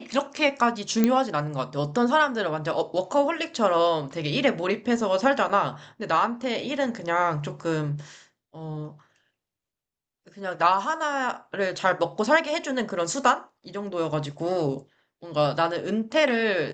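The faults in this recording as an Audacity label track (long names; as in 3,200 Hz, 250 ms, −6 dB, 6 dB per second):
1.040000	1.040000	click −8 dBFS
5.490000	5.500000	drop-out 5.2 ms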